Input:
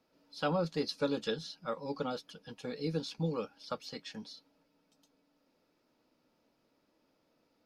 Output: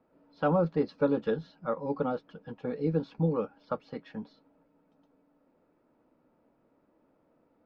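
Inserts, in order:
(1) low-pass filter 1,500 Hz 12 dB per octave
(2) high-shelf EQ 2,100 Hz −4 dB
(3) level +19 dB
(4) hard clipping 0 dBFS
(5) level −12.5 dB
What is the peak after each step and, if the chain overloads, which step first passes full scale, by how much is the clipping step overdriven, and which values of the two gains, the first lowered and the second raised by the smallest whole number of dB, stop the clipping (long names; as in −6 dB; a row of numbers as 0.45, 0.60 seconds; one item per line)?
−20.5, −21.0, −2.0, −2.0, −14.5 dBFS
no step passes full scale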